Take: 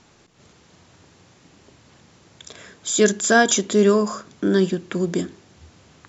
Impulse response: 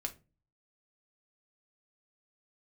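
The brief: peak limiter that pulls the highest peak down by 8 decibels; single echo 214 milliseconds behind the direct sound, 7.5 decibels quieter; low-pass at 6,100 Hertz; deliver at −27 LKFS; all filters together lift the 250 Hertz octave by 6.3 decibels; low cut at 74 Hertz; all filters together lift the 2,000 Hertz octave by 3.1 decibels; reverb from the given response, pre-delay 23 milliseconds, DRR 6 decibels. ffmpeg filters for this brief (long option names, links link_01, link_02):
-filter_complex "[0:a]highpass=74,lowpass=6100,equalizer=frequency=250:width_type=o:gain=8.5,equalizer=frequency=2000:width_type=o:gain=4,alimiter=limit=-7dB:level=0:latency=1,aecho=1:1:214:0.422,asplit=2[link_01][link_02];[1:a]atrim=start_sample=2205,adelay=23[link_03];[link_02][link_03]afir=irnorm=-1:irlink=0,volume=-6dB[link_04];[link_01][link_04]amix=inputs=2:normalize=0,volume=-10dB"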